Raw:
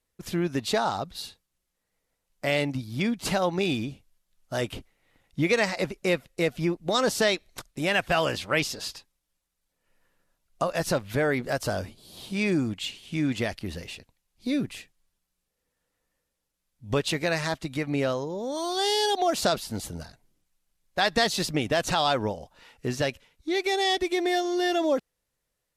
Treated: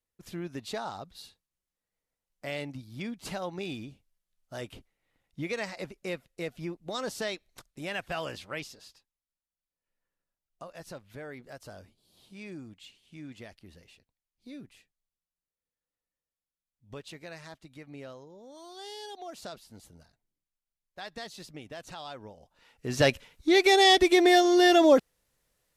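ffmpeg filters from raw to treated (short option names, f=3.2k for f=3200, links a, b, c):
-af "volume=13dB,afade=t=out:st=8.4:d=0.45:silence=0.421697,afade=t=in:st=22.31:d=0.57:silence=0.237137,afade=t=in:st=22.88:d=0.19:silence=0.281838"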